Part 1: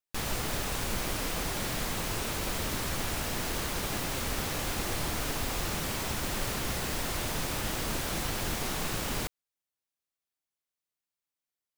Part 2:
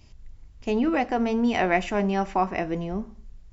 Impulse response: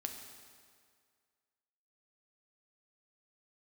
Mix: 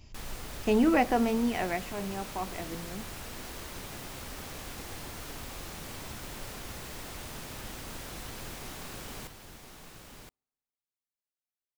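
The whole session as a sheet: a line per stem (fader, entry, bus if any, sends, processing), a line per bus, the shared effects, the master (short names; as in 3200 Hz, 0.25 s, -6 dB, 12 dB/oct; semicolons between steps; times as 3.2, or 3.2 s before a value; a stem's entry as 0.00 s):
-12.0 dB, 0.00 s, send -9 dB, echo send -5 dB, dry
1.09 s 0 dB -> 1.87 s -12.5 dB, 0.00 s, no send, no echo send, dry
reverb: on, RT60 2.0 s, pre-delay 4 ms
echo: echo 1.02 s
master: dry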